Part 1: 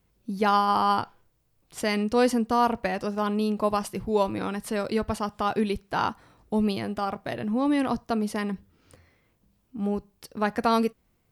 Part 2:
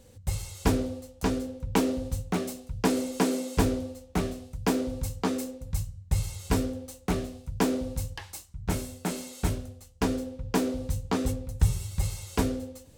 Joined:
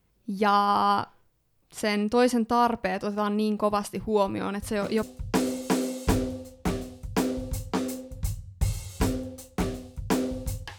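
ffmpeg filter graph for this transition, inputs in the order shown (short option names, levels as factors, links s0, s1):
-filter_complex "[1:a]asplit=2[s0][s1];[0:a]apad=whole_dur=10.78,atrim=end=10.78,atrim=end=5.032[s2];[s1]atrim=start=2.528:end=8.28[s3];[s0]atrim=start=2.12:end=2.53,asetpts=PTS-STARTPTS,volume=0.335,afade=t=in:d=0.004:c=hsin,afade=t=out:st=0.406:d=0.004:c=hsin,adelay=4620[s4];[s2][s3]acrossfade=d=0.004:c1=hsin:c2=hsin[s5];[s5][s4]amix=inputs=2:normalize=0"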